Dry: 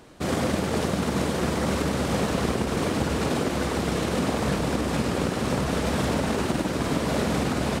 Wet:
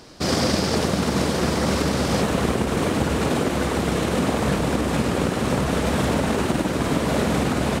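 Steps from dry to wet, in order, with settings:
parametric band 5,000 Hz +12.5 dB 0.6 octaves, from 0:00.75 +5 dB, from 0:02.22 −2.5 dB
level +3.5 dB

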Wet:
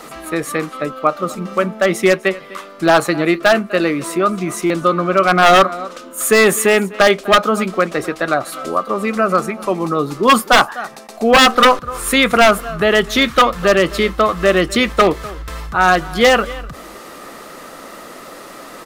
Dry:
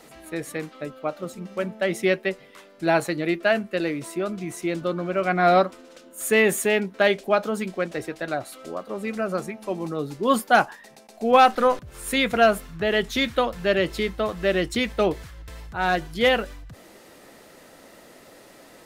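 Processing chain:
in parallel at −2.5 dB: downward compressor 5 to 1, threshold −33 dBFS, peak gain reduction 19.5 dB
on the sum: parametric band 1,200 Hz +12.5 dB 0.31 octaves
on a send: single-tap delay 251 ms −20 dB
on the sum: wave folding −10 dBFS
parametric band 100 Hz −12 dB 0.46 octaves
buffer that repeats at 0:04.66, samples 256, times 6
level +7.5 dB

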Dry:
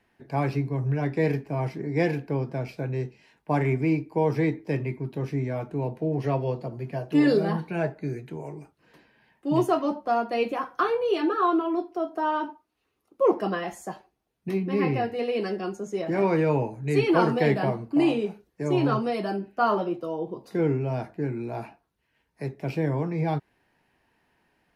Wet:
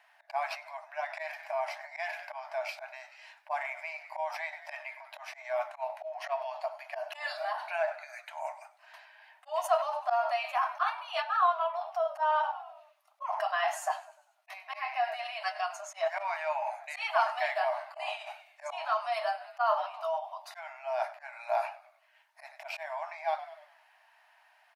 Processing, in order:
high-shelf EQ 4,900 Hz −5.5 dB
echo with shifted repeats 98 ms, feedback 56%, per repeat −63 Hz, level −19 dB
volume swells 130 ms
in parallel at 0 dB: compressor whose output falls as the input rises −32 dBFS, ratio −0.5
on the sum: linear-phase brick-wall high-pass 590 Hz
level −1.5 dB

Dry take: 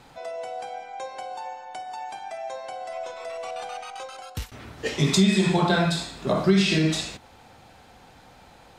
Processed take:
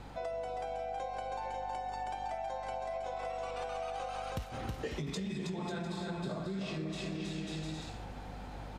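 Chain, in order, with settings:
mains hum 50 Hz, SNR 29 dB
spectral tilt −2 dB per octave
brickwall limiter −15 dBFS, peak gain reduction 10 dB
low-shelf EQ 100 Hz −6.5 dB
bouncing-ball delay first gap 320 ms, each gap 0.7×, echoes 5
downward compressor 12 to 1, threshold −35 dBFS, peak gain reduction 18 dB

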